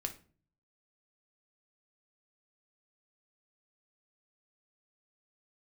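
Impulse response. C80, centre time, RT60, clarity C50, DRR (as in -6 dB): 19.0 dB, 9 ms, 0.40 s, 13.0 dB, 5.0 dB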